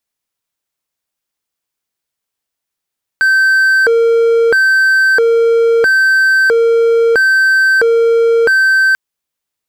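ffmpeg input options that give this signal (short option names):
-f lavfi -i "aevalsrc='0.562*(1-4*abs(mod((1005.5*t+544.5/0.76*(0.5-abs(mod(0.76*t,1)-0.5)))+0.25,1)-0.5))':d=5.74:s=44100"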